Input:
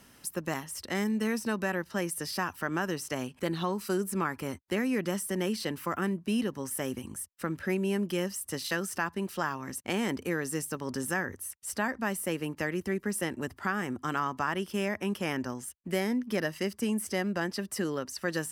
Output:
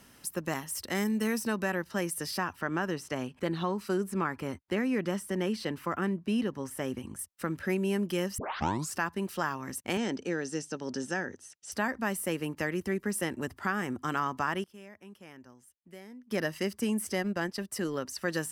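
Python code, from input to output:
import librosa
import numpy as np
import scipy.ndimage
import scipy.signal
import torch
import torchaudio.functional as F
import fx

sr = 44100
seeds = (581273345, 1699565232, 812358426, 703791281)

y = fx.high_shelf(x, sr, hz=10000.0, db=8.0, at=(0.63, 1.47))
y = fx.lowpass(y, sr, hz=3700.0, slope=6, at=(2.38, 7.19))
y = fx.cabinet(y, sr, low_hz=170.0, low_slope=12, high_hz=6900.0, hz=(1100.0, 2100.0, 6000.0), db=(-10, -6, 4), at=(9.97, 11.72))
y = fx.transient(y, sr, attack_db=-3, sustain_db=-9, at=(17.15, 17.95))
y = fx.edit(y, sr, fx.tape_start(start_s=8.38, length_s=0.57),
    fx.fade_down_up(start_s=14.45, length_s=2.05, db=-18.5, fade_s=0.19, curve='log'), tone=tone)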